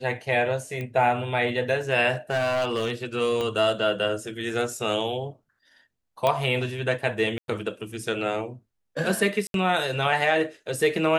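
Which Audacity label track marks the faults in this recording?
0.810000	0.810000	click −21 dBFS
2.130000	2.910000	clipping −20.5 dBFS
3.410000	3.410000	click −16 dBFS
6.270000	6.270000	click −10 dBFS
7.380000	7.480000	drop-out 102 ms
9.470000	9.540000	drop-out 72 ms

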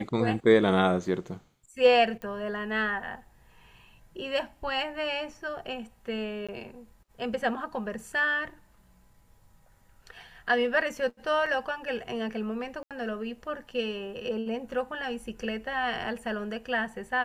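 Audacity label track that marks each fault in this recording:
2.220000	2.220000	click −26 dBFS
6.470000	6.490000	drop-out 16 ms
11.460000	11.460000	drop-out 4.3 ms
12.830000	12.910000	drop-out 77 ms

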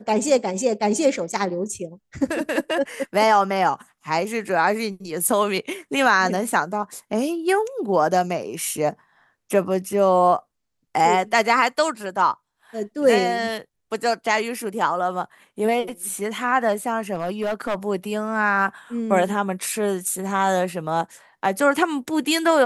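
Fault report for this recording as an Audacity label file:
17.140000	17.750000	clipping −19.5 dBFS

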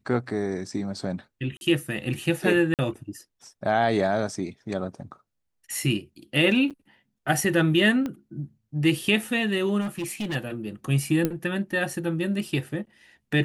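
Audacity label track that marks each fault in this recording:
1.570000	1.610000	drop-out 41 ms
2.740000	2.790000	drop-out 48 ms
6.700000	6.710000	drop-out 7.4 ms
8.060000	8.060000	click −18 dBFS
9.800000	10.360000	clipping −26 dBFS
11.250000	11.250000	click −11 dBFS

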